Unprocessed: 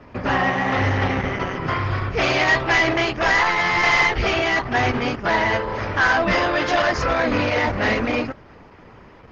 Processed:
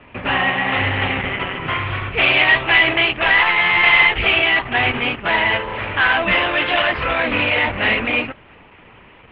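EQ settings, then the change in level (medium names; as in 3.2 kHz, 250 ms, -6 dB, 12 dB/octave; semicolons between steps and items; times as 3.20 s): steep low-pass 3.7 kHz 48 dB/octave; peaking EQ 880 Hz +2 dB; peaking EQ 2.7 kHz +13.5 dB 0.98 oct; -2.5 dB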